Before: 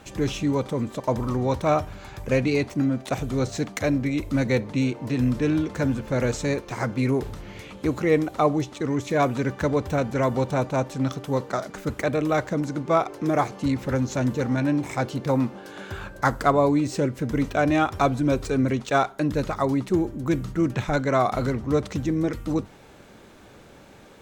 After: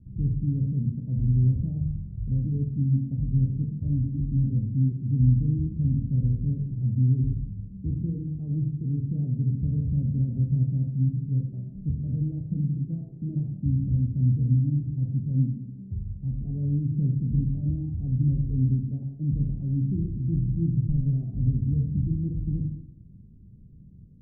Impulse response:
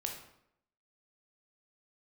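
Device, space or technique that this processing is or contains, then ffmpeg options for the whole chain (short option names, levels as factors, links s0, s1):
club heard from the street: -filter_complex "[0:a]alimiter=limit=0.2:level=0:latency=1:release=103,lowpass=f=180:w=0.5412,lowpass=f=180:w=1.3066[s0];[1:a]atrim=start_sample=2205[s1];[s0][s1]afir=irnorm=-1:irlink=0,volume=1.88"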